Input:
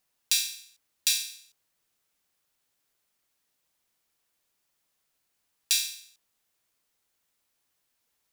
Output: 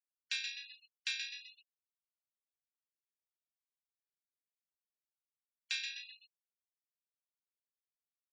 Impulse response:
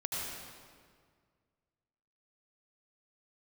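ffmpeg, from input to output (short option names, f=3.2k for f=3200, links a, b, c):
-filter_complex "[0:a]lowpass=1.7k,asplit=8[a][b][c][d][e][f][g][h];[b]adelay=127,afreqshift=54,volume=-5.5dB[i];[c]adelay=254,afreqshift=108,volume=-11.2dB[j];[d]adelay=381,afreqshift=162,volume=-16.9dB[k];[e]adelay=508,afreqshift=216,volume=-22.5dB[l];[f]adelay=635,afreqshift=270,volume=-28.2dB[m];[g]adelay=762,afreqshift=324,volume=-33.9dB[n];[h]adelay=889,afreqshift=378,volume=-39.6dB[o];[a][i][j][k][l][m][n][o]amix=inputs=8:normalize=0,afftfilt=real='re*gte(hypot(re,im),0.00398)':imag='im*gte(hypot(re,im),0.00398)':win_size=1024:overlap=0.75,highpass=1.1k,volume=3.5dB"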